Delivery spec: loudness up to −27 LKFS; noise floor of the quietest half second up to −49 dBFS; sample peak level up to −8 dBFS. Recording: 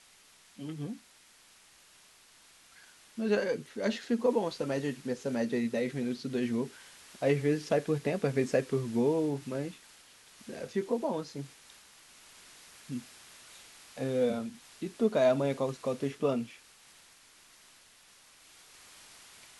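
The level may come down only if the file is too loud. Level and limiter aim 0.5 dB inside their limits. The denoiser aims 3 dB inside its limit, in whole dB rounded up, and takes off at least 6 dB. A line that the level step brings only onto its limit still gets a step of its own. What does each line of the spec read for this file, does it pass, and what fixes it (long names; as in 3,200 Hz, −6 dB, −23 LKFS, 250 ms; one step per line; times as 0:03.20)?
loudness −32.0 LKFS: in spec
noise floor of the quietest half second −60 dBFS: in spec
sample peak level −14.5 dBFS: in spec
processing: no processing needed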